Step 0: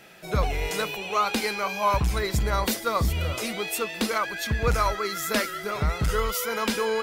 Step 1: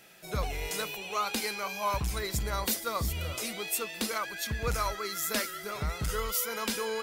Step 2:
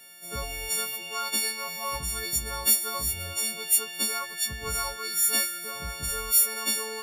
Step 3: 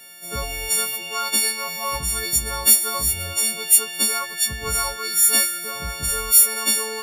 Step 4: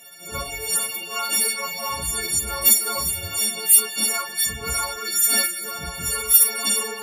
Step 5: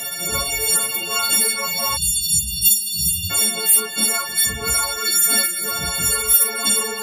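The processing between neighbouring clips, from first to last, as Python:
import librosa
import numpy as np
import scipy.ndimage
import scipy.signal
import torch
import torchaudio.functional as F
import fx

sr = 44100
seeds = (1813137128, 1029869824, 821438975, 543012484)

y1 = fx.high_shelf(x, sr, hz=4500.0, db=9.5)
y1 = y1 * librosa.db_to_amplitude(-8.0)
y2 = fx.freq_snap(y1, sr, grid_st=4)
y2 = y2 * librosa.db_to_amplitude(-4.0)
y3 = fx.dynamic_eq(y2, sr, hz=9900.0, q=1.7, threshold_db=-38.0, ratio=4.0, max_db=4)
y3 = y3 * librosa.db_to_amplitude(6.0)
y4 = fx.phase_scramble(y3, sr, seeds[0], window_ms=100)
y4 = scipy.signal.sosfilt(scipy.signal.butter(2, 66.0, 'highpass', fs=sr, output='sos'), y4)
y4 = y4 * librosa.db_to_amplitude(-1.0)
y5 = fx.spec_erase(y4, sr, start_s=1.97, length_s=1.33, low_hz=210.0, high_hz=2600.0)
y5 = fx.notch(y5, sr, hz=2500.0, q=6.0)
y5 = fx.band_squash(y5, sr, depth_pct=70)
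y5 = y5 * librosa.db_to_amplitude(3.5)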